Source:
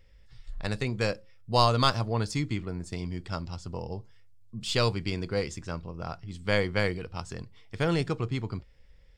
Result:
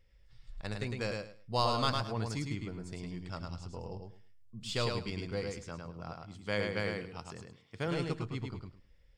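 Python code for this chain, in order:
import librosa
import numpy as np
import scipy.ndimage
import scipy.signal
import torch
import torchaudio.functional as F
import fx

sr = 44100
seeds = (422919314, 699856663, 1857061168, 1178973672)

y = fx.highpass(x, sr, hz=100.0, slope=12, at=(5.58, 7.88))
y = fx.echo_feedback(y, sr, ms=106, feedback_pct=20, wet_db=-4)
y = F.gain(torch.from_numpy(y), -8.0).numpy()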